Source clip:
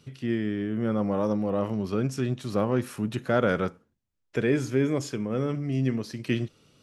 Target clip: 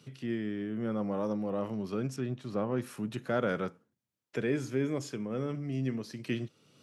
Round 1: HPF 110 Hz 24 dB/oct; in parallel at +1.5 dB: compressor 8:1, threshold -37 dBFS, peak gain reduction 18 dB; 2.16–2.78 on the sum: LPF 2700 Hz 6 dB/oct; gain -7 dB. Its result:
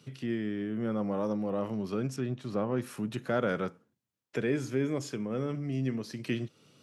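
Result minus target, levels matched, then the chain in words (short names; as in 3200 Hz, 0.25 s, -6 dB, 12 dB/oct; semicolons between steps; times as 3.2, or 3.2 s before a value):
compressor: peak gain reduction -9.5 dB
HPF 110 Hz 24 dB/oct; in parallel at +1.5 dB: compressor 8:1, threshold -48 dBFS, peak gain reduction 27.5 dB; 2.16–2.78 on the sum: LPF 2700 Hz 6 dB/oct; gain -7 dB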